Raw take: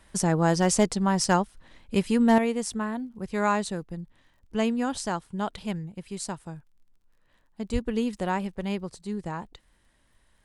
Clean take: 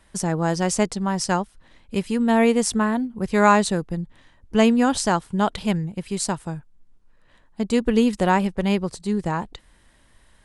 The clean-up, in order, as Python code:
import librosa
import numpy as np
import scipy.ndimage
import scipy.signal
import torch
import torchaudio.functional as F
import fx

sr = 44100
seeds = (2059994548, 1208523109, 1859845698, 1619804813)

y = fx.fix_declip(x, sr, threshold_db=-10.5)
y = fx.fix_declick_ar(y, sr, threshold=6.5)
y = fx.fix_deplosive(y, sr, at_s=(7.72,))
y = fx.fix_level(y, sr, at_s=2.38, step_db=9.0)